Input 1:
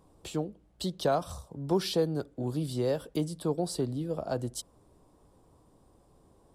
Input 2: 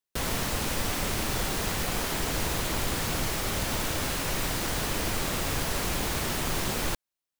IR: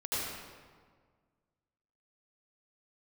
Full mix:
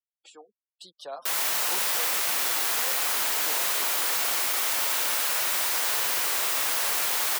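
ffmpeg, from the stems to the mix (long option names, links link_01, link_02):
-filter_complex "[0:a]flanger=delay=2.5:depth=5.2:regen=2:speed=0.4:shape=triangular,volume=-3.5dB[link_01];[1:a]highshelf=frequency=11000:gain=9.5,aeval=exprs='val(0)+0.00708*(sin(2*PI*50*n/s)+sin(2*PI*2*50*n/s)/2+sin(2*PI*3*50*n/s)/3+sin(2*PI*4*50*n/s)/4+sin(2*PI*5*50*n/s)/5)':channel_layout=same,adelay=1100,volume=1dB,asplit=2[link_02][link_03];[link_03]volume=-10dB[link_04];[2:a]atrim=start_sample=2205[link_05];[link_04][link_05]afir=irnorm=-1:irlink=0[link_06];[link_01][link_02][link_06]amix=inputs=3:normalize=0,highpass=830,afftfilt=real='re*gte(hypot(re,im),0.00251)':imag='im*gte(hypot(re,im),0.00251)':win_size=1024:overlap=0.75"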